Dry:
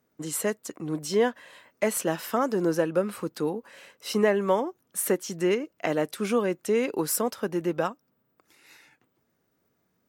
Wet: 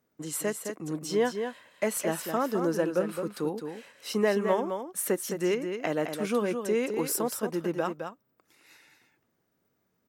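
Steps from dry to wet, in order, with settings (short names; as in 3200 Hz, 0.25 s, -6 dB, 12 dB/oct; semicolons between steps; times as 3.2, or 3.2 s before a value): echo 0.213 s -7 dB; gain -3 dB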